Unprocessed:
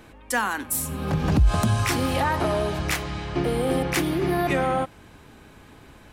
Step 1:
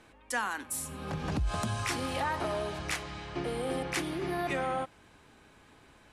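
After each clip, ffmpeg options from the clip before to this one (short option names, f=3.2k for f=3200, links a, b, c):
-af "lowpass=f=11k:w=0.5412,lowpass=f=11k:w=1.3066,lowshelf=f=360:g=-6.5,volume=-7dB"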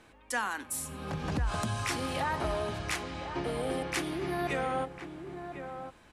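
-filter_complex "[0:a]asplit=2[a][b];[b]adelay=1050,volume=-8dB,highshelf=f=4k:g=-23.6[c];[a][c]amix=inputs=2:normalize=0"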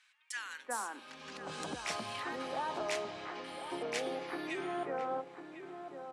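-filter_complex "[0:a]highpass=320,lowpass=7.9k,acrossover=split=1500[a][b];[a]adelay=360[c];[c][b]amix=inputs=2:normalize=0,volume=-3dB"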